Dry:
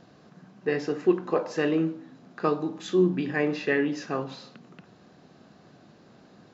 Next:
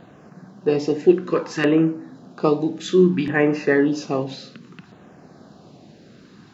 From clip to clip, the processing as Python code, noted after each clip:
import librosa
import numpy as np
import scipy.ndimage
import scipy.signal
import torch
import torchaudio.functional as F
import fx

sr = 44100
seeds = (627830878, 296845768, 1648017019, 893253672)

y = fx.filter_lfo_notch(x, sr, shape='saw_down', hz=0.61, low_hz=480.0, high_hz=5600.0, q=0.97)
y = F.gain(torch.from_numpy(y), 8.0).numpy()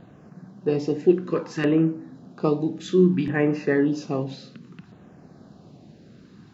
y = fx.low_shelf(x, sr, hz=250.0, db=9.5)
y = F.gain(torch.from_numpy(y), -6.5).numpy()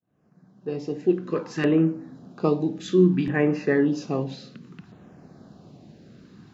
y = fx.fade_in_head(x, sr, length_s=1.64)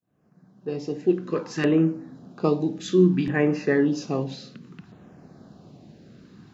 y = fx.dynamic_eq(x, sr, hz=6000.0, q=0.95, threshold_db=-53.0, ratio=4.0, max_db=4)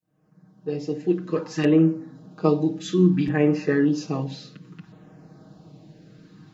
y = x + 0.99 * np.pad(x, (int(6.4 * sr / 1000.0), 0))[:len(x)]
y = F.gain(torch.from_numpy(y), -3.0).numpy()